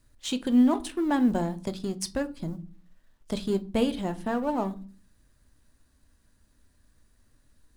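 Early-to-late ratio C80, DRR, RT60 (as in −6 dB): 25.5 dB, 10.5 dB, 0.40 s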